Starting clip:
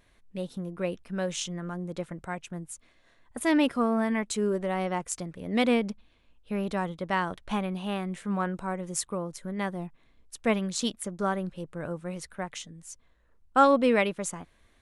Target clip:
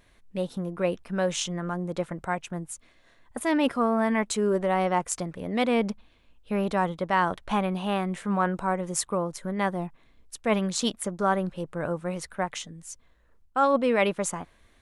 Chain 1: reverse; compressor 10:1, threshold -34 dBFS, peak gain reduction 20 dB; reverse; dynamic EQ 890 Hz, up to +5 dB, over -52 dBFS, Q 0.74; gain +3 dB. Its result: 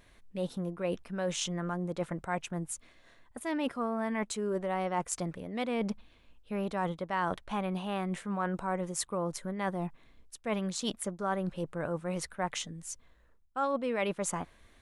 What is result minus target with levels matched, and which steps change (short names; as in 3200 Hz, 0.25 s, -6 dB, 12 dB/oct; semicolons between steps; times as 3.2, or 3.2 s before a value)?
compressor: peak gain reduction +9 dB
change: compressor 10:1, threshold -24 dBFS, peak gain reduction 11 dB